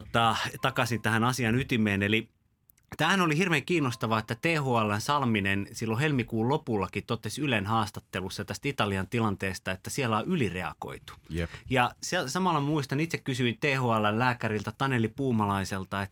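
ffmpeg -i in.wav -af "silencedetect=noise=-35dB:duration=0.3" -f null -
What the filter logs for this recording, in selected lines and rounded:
silence_start: 2.22
silence_end: 2.70 | silence_duration: 0.48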